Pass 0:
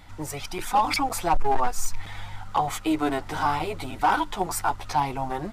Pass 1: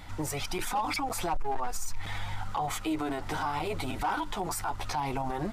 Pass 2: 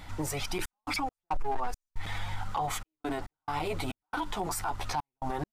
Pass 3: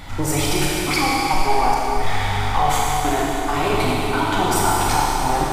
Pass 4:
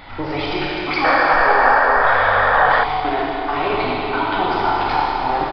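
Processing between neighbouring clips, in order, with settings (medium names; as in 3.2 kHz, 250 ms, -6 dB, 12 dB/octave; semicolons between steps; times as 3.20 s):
in parallel at -2 dB: compression, threshold -29 dBFS, peak gain reduction 12.5 dB; on the sum: peak limiter -21.5 dBFS, peak gain reduction 10.5 dB; trim -2 dB
trance gate "xxx.x.xx.x" 69 bpm -60 dB
Schroeder reverb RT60 3.8 s, combs from 28 ms, DRR -5.5 dB; trim +9 dB
tone controls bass -10 dB, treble -9 dB; resampled via 11.025 kHz; painted sound noise, 1.04–2.84 s, 460–1900 Hz -17 dBFS; trim +1.5 dB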